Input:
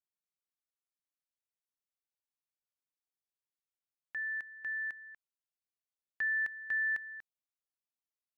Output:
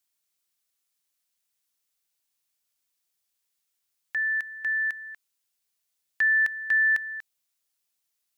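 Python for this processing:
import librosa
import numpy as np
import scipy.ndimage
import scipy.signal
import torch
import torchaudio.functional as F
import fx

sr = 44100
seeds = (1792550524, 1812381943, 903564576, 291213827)

y = fx.high_shelf(x, sr, hz=2200.0, db=11.5)
y = y * 10.0 ** (6.0 / 20.0)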